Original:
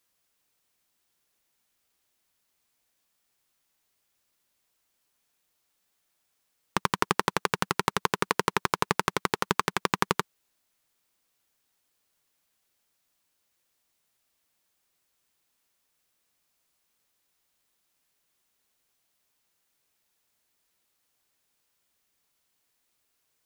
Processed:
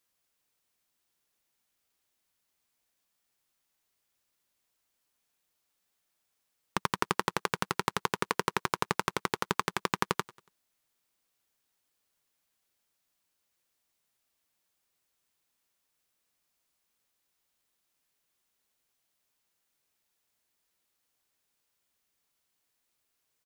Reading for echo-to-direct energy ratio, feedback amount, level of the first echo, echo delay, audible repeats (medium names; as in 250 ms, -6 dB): -20.0 dB, 42%, -21.0 dB, 94 ms, 2